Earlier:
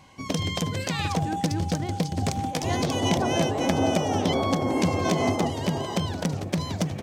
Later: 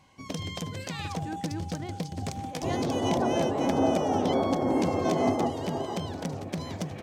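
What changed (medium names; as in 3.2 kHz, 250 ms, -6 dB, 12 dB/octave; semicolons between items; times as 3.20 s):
speech -4.5 dB; first sound -7.5 dB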